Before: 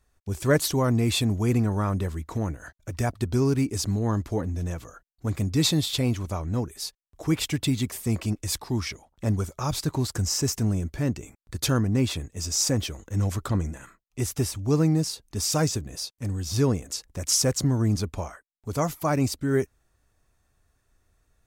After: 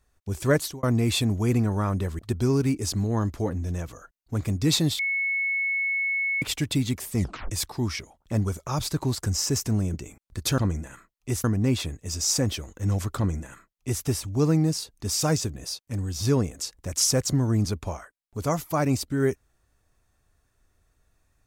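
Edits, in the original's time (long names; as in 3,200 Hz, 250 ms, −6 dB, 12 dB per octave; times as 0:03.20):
0:00.51–0:00.83: fade out linear
0:02.19–0:03.11: remove
0:05.91–0:07.34: beep over 2,200 Hz −23 dBFS
0:08.09: tape stop 0.34 s
0:10.86–0:11.11: remove
0:13.48–0:14.34: duplicate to 0:11.75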